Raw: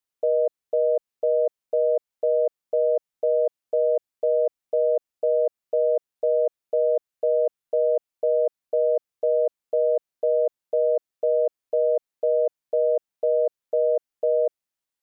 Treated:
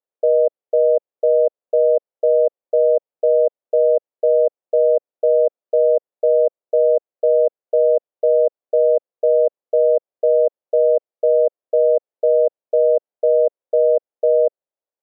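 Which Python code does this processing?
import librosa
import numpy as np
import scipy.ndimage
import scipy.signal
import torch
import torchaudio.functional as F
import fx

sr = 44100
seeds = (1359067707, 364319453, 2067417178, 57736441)

y = fx.bandpass_q(x, sr, hz=540.0, q=2.5)
y = y * 10.0 ** (8.0 / 20.0)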